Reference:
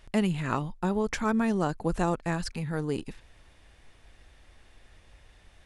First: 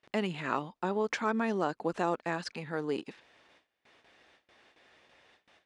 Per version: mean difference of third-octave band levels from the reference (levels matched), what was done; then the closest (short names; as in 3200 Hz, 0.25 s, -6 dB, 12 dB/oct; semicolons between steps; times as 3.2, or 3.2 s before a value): 4.0 dB: gate with hold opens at -45 dBFS; in parallel at -2.5 dB: limiter -19.5 dBFS, peak gain reduction 7.5 dB; on the sum: BPF 300–5000 Hz; gain -4.5 dB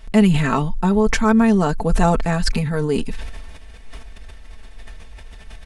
2.5 dB: low shelf 82 Hz +8 dB; comb 4.5 ms; sustainer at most 31 dB/s; gain +6.5 dB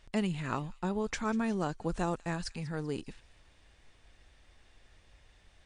1.0 dB: bell 4700 Hz +2.5 dB 1.6 oct; thin delay 0.193 s, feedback 44%, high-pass 2700 Hz, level -17 dB; gain -5 dB; MP3 56 kbps 22050 Hz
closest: third